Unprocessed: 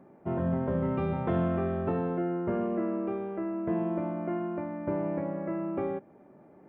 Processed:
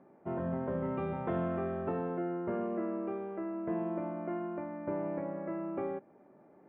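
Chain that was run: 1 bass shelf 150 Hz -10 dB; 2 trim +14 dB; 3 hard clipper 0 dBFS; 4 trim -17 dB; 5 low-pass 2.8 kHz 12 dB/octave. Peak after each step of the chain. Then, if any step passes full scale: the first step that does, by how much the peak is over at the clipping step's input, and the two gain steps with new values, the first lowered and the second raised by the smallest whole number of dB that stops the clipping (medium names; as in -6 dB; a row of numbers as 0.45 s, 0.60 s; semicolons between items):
-20.0 dBFS, -6.0 dBFS, -6.0 dBFS, -23.0 dBFS, -23.0 dBFS; nothing clips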